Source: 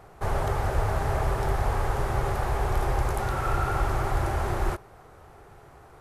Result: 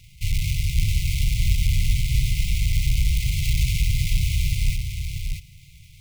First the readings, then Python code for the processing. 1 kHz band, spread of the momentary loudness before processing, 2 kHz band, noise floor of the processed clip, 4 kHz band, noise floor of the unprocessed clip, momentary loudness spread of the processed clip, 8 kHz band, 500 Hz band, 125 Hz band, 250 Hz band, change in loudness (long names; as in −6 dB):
below −40 dB, 2 LU, +1.5 dB, −48 dBFS, +13.5 dB, −51 dBFS, 7 LU, +11.0 dB, below −40 dB, +6.0 dB, +0.5 dB, +4.0 dB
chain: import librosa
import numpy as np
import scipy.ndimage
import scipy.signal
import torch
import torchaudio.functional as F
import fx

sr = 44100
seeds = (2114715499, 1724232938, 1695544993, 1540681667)

p1 = fx.halfwave_hold(x, sr)
p2 = fx.brickwall_bandstop(p1, sr, low_hz=180.0, high_hz=2000.0)
y = p2 + fx.echo_single(p2, sr, ms=635, db=-5.5, dry=0)